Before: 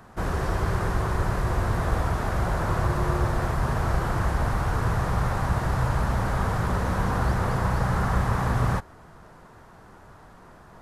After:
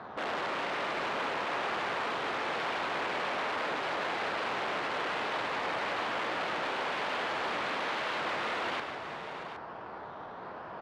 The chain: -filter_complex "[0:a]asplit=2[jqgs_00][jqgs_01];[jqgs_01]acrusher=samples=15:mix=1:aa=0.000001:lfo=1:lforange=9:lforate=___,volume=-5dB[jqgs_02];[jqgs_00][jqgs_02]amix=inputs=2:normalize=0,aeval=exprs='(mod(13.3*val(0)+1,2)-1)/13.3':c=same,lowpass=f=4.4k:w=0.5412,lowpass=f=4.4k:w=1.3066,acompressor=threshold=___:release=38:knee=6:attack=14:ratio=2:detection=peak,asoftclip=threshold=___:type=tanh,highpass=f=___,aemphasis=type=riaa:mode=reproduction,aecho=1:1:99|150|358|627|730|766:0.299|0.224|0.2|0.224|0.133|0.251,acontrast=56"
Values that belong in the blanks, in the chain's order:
1.1, -40dB, -34.5dB, 590